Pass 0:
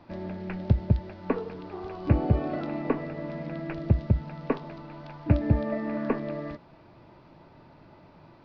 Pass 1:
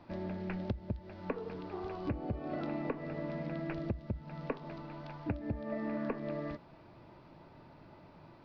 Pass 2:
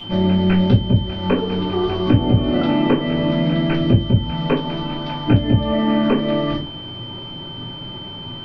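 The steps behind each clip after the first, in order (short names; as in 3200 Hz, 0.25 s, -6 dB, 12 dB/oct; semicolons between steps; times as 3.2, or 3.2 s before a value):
compressor 16:1, threshold -29 dBFS, peak gain reduction 15.5 dB; gain -3 dB
whine 3100 Hz -42 dBFS; reverb RT60 0.25 s, pre-delay 5 ms, DRR -6.5 dB; gain +8.5 dB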